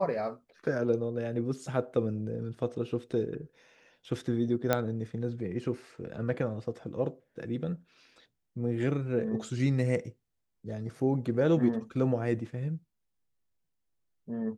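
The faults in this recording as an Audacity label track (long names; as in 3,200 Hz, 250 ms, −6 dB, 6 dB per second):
4.730000	4.730000	click −11 dBFS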